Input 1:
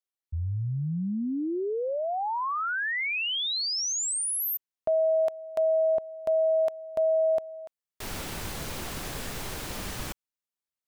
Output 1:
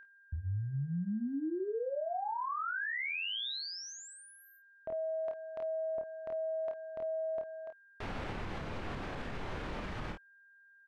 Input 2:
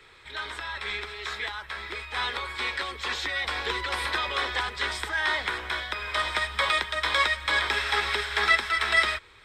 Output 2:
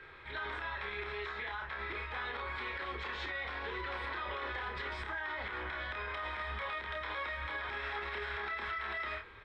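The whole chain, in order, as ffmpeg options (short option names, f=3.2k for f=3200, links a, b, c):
-filter_complex "[0:a]lowpass=2.2k,aeval=exprs='val(0)+0.00251*sin(2*PI*1600*n/s)':c=same,acompressor=threshold=-36dB:ratio=2.5:attack=13:release=95:knee=6:detection=rms,asplit=2[a][b];[b]aecho=0:1:29|51:0.596|0.316[c];[a][c]amix=inputs=2:normalize=0,alimiter=level_in=6.5dB:limit=-24dB:level=0:latency=1:release=63,volume=-6.5dB"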